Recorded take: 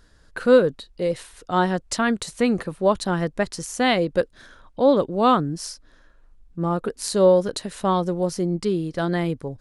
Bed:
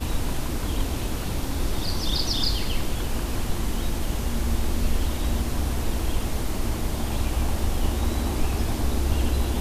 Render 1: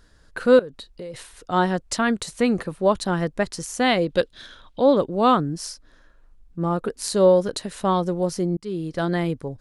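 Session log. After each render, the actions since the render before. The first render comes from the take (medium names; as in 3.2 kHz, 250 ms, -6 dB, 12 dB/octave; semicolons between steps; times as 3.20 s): 0.59–1.14 s: compression, threshold -32 dBFS; 4.09–4.81 s: peaking EQ 3.5 kHz +12 dB 0.91 oct; 8.57–9.01 s: fade in equal-power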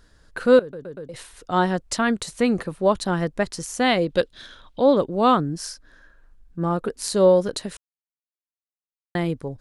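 0.61 s: stutter in place 0.12 s, 4 plays; 5.58–6.72 s: peaking EQ 1.6 kHz +10.5 dB 0.21 oct; 7.77–9.15 s: mute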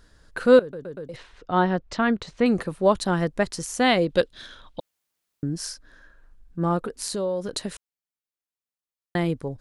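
1.16–2.46 s: distance through air 190 m; 4.80–5.43 s: room tone; 6.78–7.52 s: compression 3:1, threshold -27 dBFS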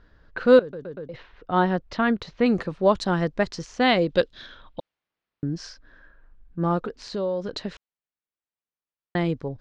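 low-pass 6.4 kHz 24 dB/octave; level-controlled noise filter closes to 2.6 kHz, open at -17 dBFS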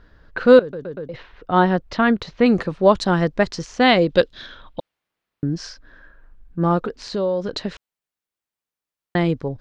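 trim +5 dB; peak limiter -1 dBFS, peak gain reduction 1.5 dB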